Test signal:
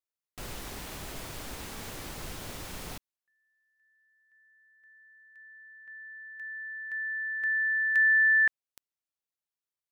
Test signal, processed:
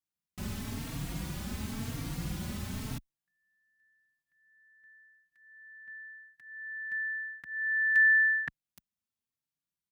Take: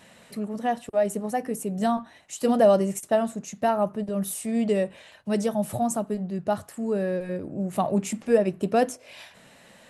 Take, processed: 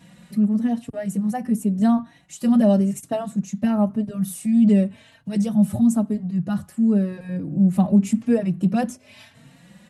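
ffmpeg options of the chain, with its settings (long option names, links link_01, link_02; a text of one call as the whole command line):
ffmpeg -i in.wav -filter_complex "[0:a]highpass=frequency=65:poles=1,lowshelf=frequency=300:width_type=q:width=1.5:gain=11,alimiter=level_in=7.5dB:limit=-1dB:release=50:level=0:latency=1,asplit=2[link_01][link_02];[link_02]adelay=3.8,afreqshift=0.94[link_03];[link_01][link_03]amix=inputs=2:normalize=1,volume=-6.5dB" out.wav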